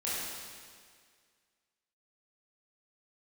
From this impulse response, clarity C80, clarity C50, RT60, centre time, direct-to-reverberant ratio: -1.0 dB, -3.5 dB, 1.9 s, 133 ms, -9.5 dB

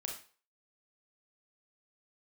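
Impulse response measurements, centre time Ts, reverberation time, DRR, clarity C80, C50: 27 ms, 0.40 s, 0.5 dB, 10.5 dB, 5.5 dB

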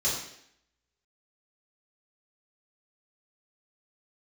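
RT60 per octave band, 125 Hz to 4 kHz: 0.60 s, 0.75 s, 0.70 s, 0.70 s, 0.75 s, 0.70 s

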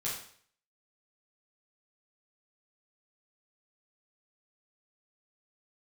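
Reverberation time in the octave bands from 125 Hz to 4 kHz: 0.55 s, 0.55 s, 0.55 s, 0.55 s, 0.55 s, 0.55 s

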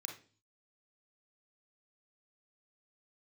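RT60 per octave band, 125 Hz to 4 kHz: 0.70 s, 0.55 s, 0.45 s, 0.35 s, 0.40 s, 0.45 s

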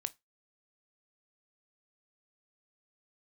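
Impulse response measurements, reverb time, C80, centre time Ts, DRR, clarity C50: 0.20 s, 35.0 dB, 2 ms, 13.0 dB, 25.0 dB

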